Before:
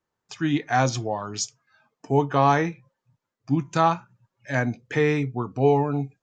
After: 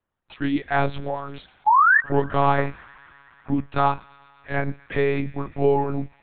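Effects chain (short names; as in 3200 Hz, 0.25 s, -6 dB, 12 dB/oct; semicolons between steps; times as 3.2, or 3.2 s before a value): 1.66–2 painted sound rise 820–1900 Hz -15 dBFS; 2.58–3.53 band shelf 930 Hz +9 dB; thin delay 0.118 s, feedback 83%, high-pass 1700 Hz, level -21 dB; monotone LPC vocoder at 8 kHz 140 Hz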